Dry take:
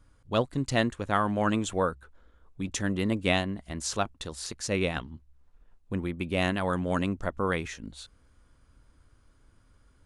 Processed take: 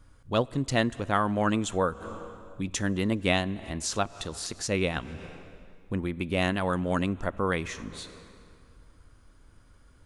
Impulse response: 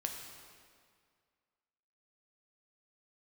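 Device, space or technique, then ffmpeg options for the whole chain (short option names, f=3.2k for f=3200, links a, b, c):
ducked reverb: -filter_complex "[0:a]asplit=3[a][b][c];[1:a]atrim=start_sample=2205[d];[b][d]afir=irnorm=-1:irlink=0[e];[c]apad=whole_len=443508[f];[e][f]sidechaincompress=threshold=-45dB:ratio=8:attack=35:release=139,volume=-2.5dB[g];[a][g]amix=inputs=2:normalize=0"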